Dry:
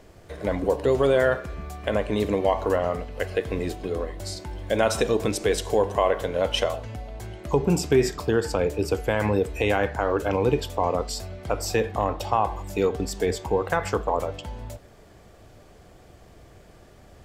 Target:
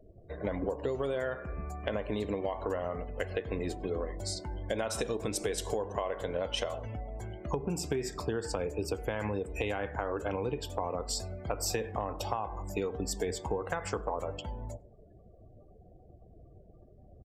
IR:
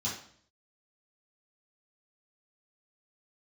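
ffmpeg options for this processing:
-filter_complex "[0:a]afftdn=noise_reduction=34:noise_floor=-46,asplit=2[link_01][link_02];[link_02]adelay=98,lowpass=frequency=1300:poles=1,volume=-23dB,asplit=2[link_03][link_04];[link_04]adelay=98,lowpass=frequency=1300:poles=1,volume=0.41,asplit=2[link_05][link_06];[link_06]adelay=98,lowpass=frequency=1300:poles=1,volume=0.41[link_07];[link_01][link_03][link_05][link_07]amix=inputs=4:normalize=0,acompressor=threshold=-25dB:ratio=20,adynamicequalizer=threshold=0.00316:dfrequency=5400:dqfactor=0.7:tfrequency=5400:tqfactor=0.7:attack=5:release=100:ratio=0.375:range=2.5:mode=boostabove:tftype=highshelf,volume=-3.5dB"

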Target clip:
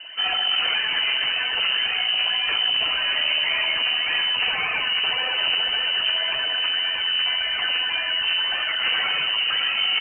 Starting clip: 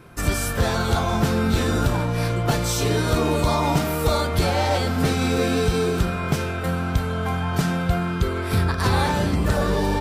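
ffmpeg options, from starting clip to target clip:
ffmpeg -i in.wav -af "afftfilt=real='re*lt(hypot(re,im),0.631)':imag='im*lt(hypot(re,im),0.631)':win_size=1024:overlap=0.75,adynamicequalizer=threshold=0.0141:dfrequency=610:dqfactor=0.92:tfrequency=610:tqfactor=0.92:attack=5:release=100:ratio=0.375:range=2:mode=cutabove:tftype=bell,aphaser=in_gain=1:out_gain=1:delay=1.7:decay=0.51:speed=1.8:type=triangular,aresample=8000,asoftclip=type=tanh:threshold=-24dB,aresample=44100,aecho=1:1:327:0.237,lowpass=frequency=2600:width_type=q:width=0.5098,lowpass=frequency=2600:width_type=q:width=0.6013,lowpass=frequency=2600:width_type=q:width=0.9,lowpass=frequency=2600:width_type=q:width=2.563,afreqshift=-3100,volume=4.5dB" out.wav

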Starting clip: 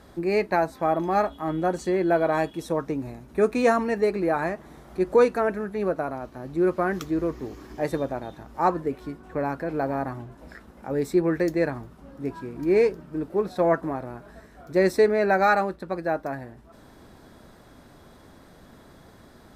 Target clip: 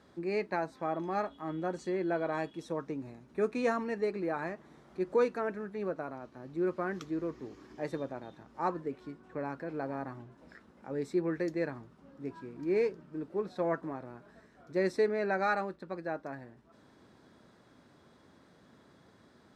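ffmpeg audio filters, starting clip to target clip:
ffmpeg -i in.wav -af "highpass=110,lowpass=7100,equalizer=frequency=710:width_type=o:width=0.48:gain=-3.5,volume=-9dB" out.wav

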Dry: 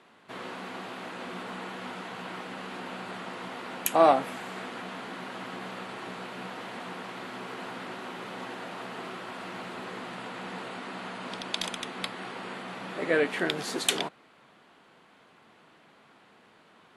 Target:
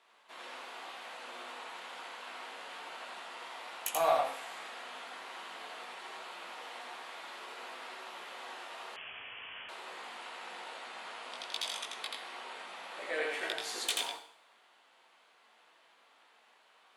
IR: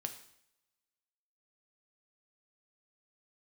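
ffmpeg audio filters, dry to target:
-filter_complex "[0:a]highpass=780,equalizer=frequency=1500:width=1.1:gain=-4.5,asoftclip=type=tanh:threshold=-16.5dB,flanger=delay=17.5:depth=2:speed=1.1,asplit=2[link_01][link_02];[1:a]atrim=start_sample=2205,asetrate=48510,aresample=44100,adelay=84[link_03];[link_02][link_03]afir=irnorm=-1:irlink=0,volume=1dB[link_04];[link_01][link_04]amix=inputs=2:normalize=0,asettb=1/sr,asplit=3[link_05][link_06][link_07];[link_05]atrim=end=8.964[link_08];[link_06]atrim=start=8.96:end=9.69,asetpts=PTS-STARTPTS,afade=type=in:duration=0.004:curve=qsin,afade=type=out:start_time=0.726:duration=0.004:curve=qsin,lowpass=frequency=3100:width_type=q:width=0.5098,lowpass=frequency=3100:width_type=q:width=0.6013,lowpass=frequency=3100:width_type=q:width=0.9,lowpass=frequency=3100:width_type=q:width=2.563,afreqshift=-3700[link_09];[link_07]atrim=start=9.686[link_10];[link_08][link_09]acrossfade=duration=0.004:curve1=hsin:curve2=qsin[link_11];[link_11][link_10]acrossfade=duration=0.004:curve1=qsin:curve2=hsin,volume=-1dB"

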